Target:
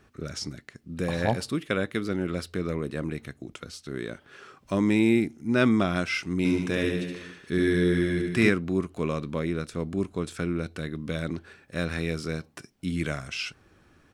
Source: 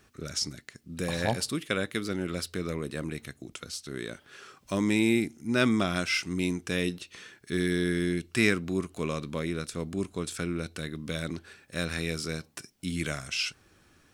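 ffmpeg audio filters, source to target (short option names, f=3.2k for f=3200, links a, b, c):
-filter_complex "[0:a]highshelf=f=3.2k:g=-11.5,asplit=3[a][b][c];[a]afade=t=out:st=6.44:d=0.02[d];[b]aecho=1:1:70|147|231.7|324.9|427.4:0.631|0.398|0.251|0.158|0.1,afade=t=in:st=6.44:d=0.02,afade=t=out:st=8.48:d=0.02[e];[c]afade=t=in:st=8.48:d=0.02[f];[d][e][f]amix=inputs=3:normalize=0,volume=3.5dB"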